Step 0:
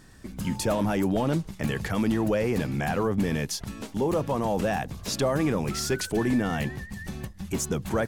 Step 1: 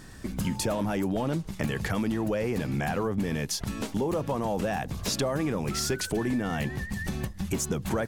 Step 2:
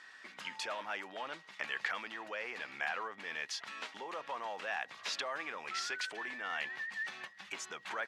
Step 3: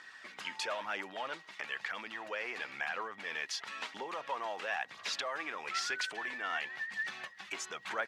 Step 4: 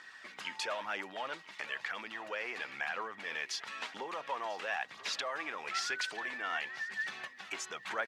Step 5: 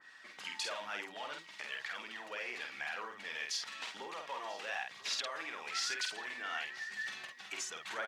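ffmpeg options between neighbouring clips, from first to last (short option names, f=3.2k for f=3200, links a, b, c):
-af "acompressor=threshold=-32dB:ratio=4,volume=5.5dB"
-af "lowpass=3k,aeval=exprs='val(0)+0.00112*sin(2*PI*1900*n/s)':c=same,highpass=1.4k,volume=1.5dB"
-af "alimiter=level_in=1.5dB:limit=-24dB:level=0:latency=1:release=421,volume=-1.5dB,aphaser=in_gain=1:out_gain=1:delay=3.2:decay=0.32:speed=1:type=triangular,volume=2dB"
-af "aecho=1:1:993:0.106"
-filter_complex "[0:a]asplit=2[a][b];[b]adelay=49,volume=-4dB[c];[a][c]amix=inputs=2:normalize=0,adynamicequalizer=threshold=0.00316:dfrequency=2600:dqfactor=0.7:tfrequency=2600:tqfactor=0.7:attack=5:release=100:ratio=0.375:range=3.5:mode=boostabove:tftype=highshelf,volume=-6dB"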